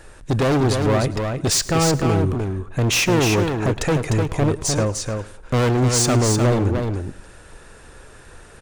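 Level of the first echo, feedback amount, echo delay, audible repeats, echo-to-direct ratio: −19.0 dB, repeats not evenly spaced, 106 ms, 5, −5.0 dB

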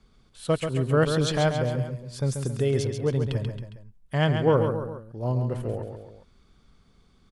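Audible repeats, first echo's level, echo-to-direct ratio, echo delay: 3, −6.5 dB, −5.5 dB, 136 ms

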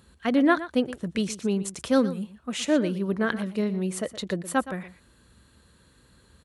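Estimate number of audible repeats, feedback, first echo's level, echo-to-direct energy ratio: 1, repeats not evenly spaced, −14.5 dB, −14.5 dB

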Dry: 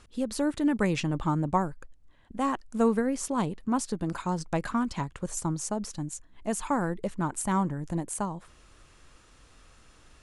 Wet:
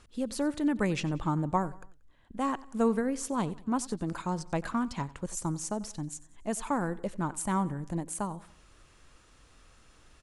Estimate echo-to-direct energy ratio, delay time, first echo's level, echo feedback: −19.0 dB, 92 ms, −20.0 dB, 45%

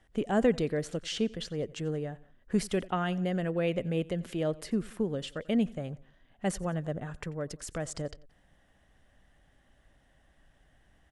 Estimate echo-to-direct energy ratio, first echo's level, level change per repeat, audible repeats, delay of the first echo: −21.0 dB, −22.5 dB, −4.5 dB, 2, 90 ms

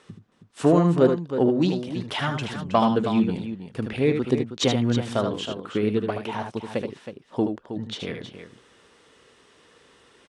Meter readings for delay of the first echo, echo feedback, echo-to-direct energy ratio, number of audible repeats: 76 ms, repeats not evenly spaced, −5.0 dB, 2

